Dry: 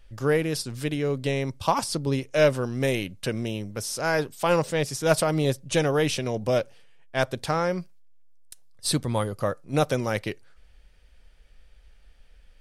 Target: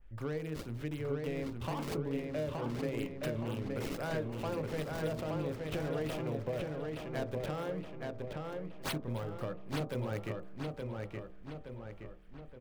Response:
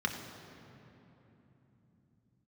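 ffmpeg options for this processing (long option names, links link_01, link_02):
-filter_complex "[0:a]acrossover=split=560|2800[link_01][link_02][link_03];[link_01]asplit=2[link_04][link_05];[link_05]adelay=26,volume=-4dB[link_06];[link_04][link_06]amix=inputs=2:normalize=0[link_07];[link_02]asoftclip=type=tanh:threshold=-28dB[link_08];[link_03]acrusher=samples=31:mix=1:aa=0.000001:lfo=1:lforange=49.6:lforate=3.9[link_09];[link_07][link_08][link_09]amix=inputs=3:normalize=0,bandreject=frequency=64.54:width_type=h:width=4,bandreject=frequency=129.08:width_type=h:width=4,bandreject=frequency=193.62:width_type=h:width=4,bandreject=frequency=258.16:width_type=h:width=4,bandreject=frequency=322.7:width_type=h:width=4,bandreject=frequency=387.24:width_type=h:width=4,bandreject=frequency=451.78:width_type=h:width=4,bandreject=frequency=516.32:width_type=h:width=4,bandreject=frequency=580.86:width_type=h:width=4,bandreject=frequency=645.4:width_type=h:width=4,bandreject=frequency=709.94:width_type=h:width=4,bandreject=frequency=774.48:width_type=h:width=4,bandreject=frequency=839.02:width_type=h:width=4,bandreject=frequency=903.56:width_type=h:width=4,bandreject=frequency=968.1:width_type=h:width=4,bandreject=frequency=1032.64:width_type=h:width=4,bandreject=frequency=1097.18:width_type=h:width=4,bandreject=frequency=1161.72:width_type=h:width=4,bandreject=frequency=1226.26:width_type=h:width=4,acompressor=threshold=-29dB:ratio=4,asplit=2[link_10][link_11];[link_11]adelay=871,lowpass=frequency=4500:poles=1,volume=-3dB,asplit=2[link_12][link_13];[link_13]adelay=871,lowpass=frequency=4500:poles=1,volume=0.52,asplit=2[link_14][link_15];[link_15]adelay=871,lowpass=frequency=4500:poles=1,volume=0.52,asplit=2[link_16][link_17];[link_17]adelay=871,lowpass=frequency=4500:poles=1,volume=0.52,asplit=2[link_18][link_19];[link_19]adelay=871,lowpass=frequency=4500:poles=1,volume=0.52,asplit=2[link_20][link_21];[link_21]adelay=871,lowpass=frequency=4500:poles=1,volume=0.52,asplit=2[link_22][link_23];[link_23]adelay=871,lowpass=frequency=4500:poles=1,volume=0.52[link_24];[link_10][link_12][link_14][link_16][link_18][link_20][link_22][link_24]amix=inputs=8:normalize=0,adynamicequalizer=threshold=0.00282:dfrequency=2500:dqfactor=0.7:tfrequency=2500:tqfactor=0.7:attack=5:release=100:ratio=0.375:range=2:mode=boostabove:tftype=highshelf,volume=-6.5dB"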